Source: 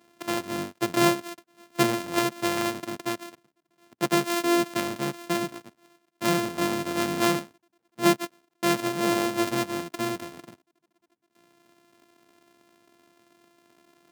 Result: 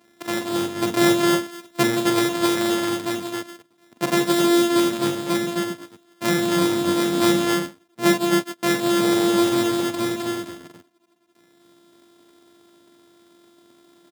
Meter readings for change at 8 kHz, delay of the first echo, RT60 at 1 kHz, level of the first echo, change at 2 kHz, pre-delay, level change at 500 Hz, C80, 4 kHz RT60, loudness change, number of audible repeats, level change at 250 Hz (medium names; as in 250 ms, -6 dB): +5.0 dB, 43 ms, no reverb, -5.5 dB, +4.5 dB, no reverb, +6.5 dB, no reverb, no reverb, +5.5 dB, 3, +7.5 dB